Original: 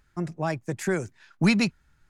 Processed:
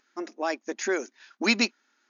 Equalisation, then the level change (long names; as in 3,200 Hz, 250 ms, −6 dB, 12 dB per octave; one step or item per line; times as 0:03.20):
linear-phase brick-wall band-pass 220–6,900 Hz
high-shelf EQ 3,400 Hz +8 dB
0.0 dB